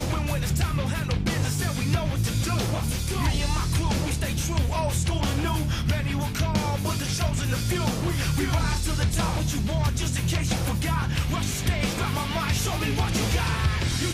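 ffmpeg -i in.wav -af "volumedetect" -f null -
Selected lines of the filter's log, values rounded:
mean_volume: -24.7 dB
max_volume: -13.0 dB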